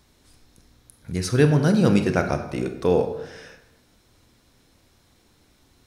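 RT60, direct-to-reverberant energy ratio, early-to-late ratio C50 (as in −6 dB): 0.95 s, 6.5 dB, 9.0 dB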